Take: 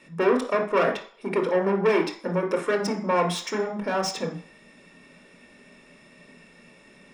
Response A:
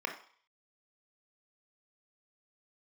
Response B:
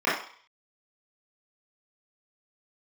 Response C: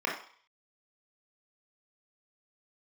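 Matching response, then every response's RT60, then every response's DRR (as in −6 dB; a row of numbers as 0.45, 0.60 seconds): A; 0.50, 0.50, 0.50 seconds; 3.0, −11.5, −3.0 decibels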